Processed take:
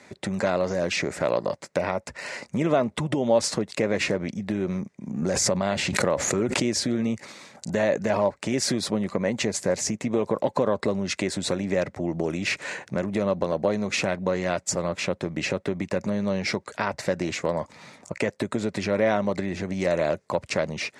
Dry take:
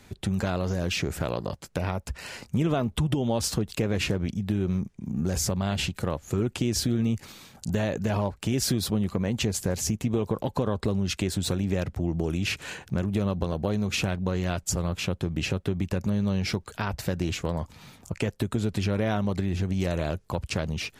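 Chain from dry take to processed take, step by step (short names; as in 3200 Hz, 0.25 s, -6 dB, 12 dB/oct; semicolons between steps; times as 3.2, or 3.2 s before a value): speaker cabinet 200–9000 Hz, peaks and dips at 580 Hz +8 dB, 1000 Hz +3 dB, 2000 Hz +8 dB, 3100 Hz -6 dB; 5.22–6.71 backwards sustainer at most 25 dB/s; gain +2.5 dB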